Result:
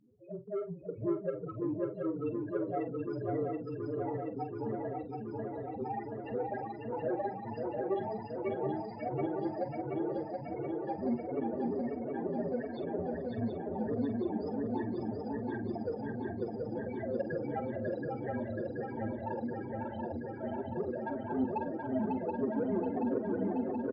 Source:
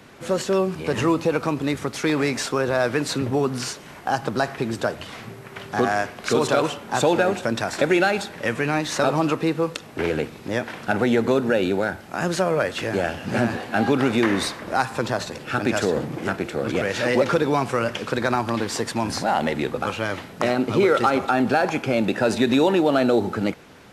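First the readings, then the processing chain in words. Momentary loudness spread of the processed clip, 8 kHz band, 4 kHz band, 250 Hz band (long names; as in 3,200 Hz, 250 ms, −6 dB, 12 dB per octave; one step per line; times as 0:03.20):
6 LU, below −40 dB, below −30 dB, −11.5 dB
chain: partials spread apart or drawn together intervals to 110%
mains-hum notches 50/100/150/200 Hz
all-pass phaser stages 12, 3 Hz, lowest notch 180–2,400 Hz
spectral peaks only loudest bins 4
soft clipping −17.5 dBFS, distortion −18 dB
transient designer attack 0 dB, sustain −8 dB
floating-point word with a short mantissa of 8 bits
linear-phase brick-wall low-pass 5,100 Hz
double-tracking delay 46 ms −11 dB
feedback echo with a long and a short gap by turns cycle 727 ms, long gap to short 3 to 1, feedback 75%, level −3.5 dB
level −9 dB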